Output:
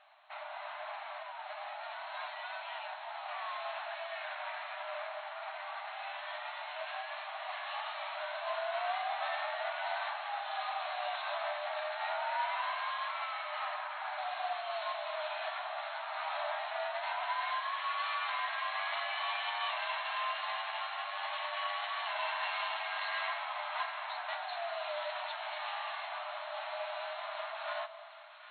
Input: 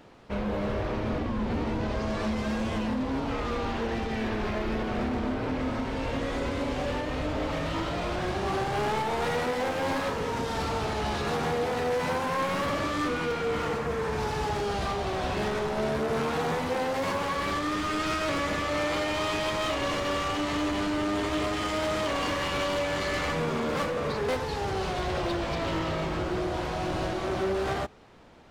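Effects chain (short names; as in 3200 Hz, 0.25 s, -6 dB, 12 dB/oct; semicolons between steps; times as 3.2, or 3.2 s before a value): split-band echo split 1200 Hz, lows 0.228 s, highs 0.754 s, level -12.5 dB; frequency shift -120 Hz; flange 1.5 Hz, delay 8.8 ms, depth 1.2 ms, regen -65%; FFT band-pass 590–4300 Hz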